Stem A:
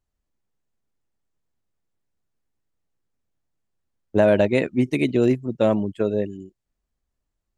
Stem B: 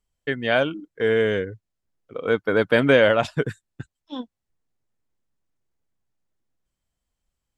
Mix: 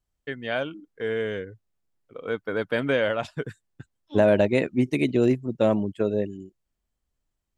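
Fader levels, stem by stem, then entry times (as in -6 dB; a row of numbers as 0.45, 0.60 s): -2.0, -7.5 dB; 0.00, 0.00 s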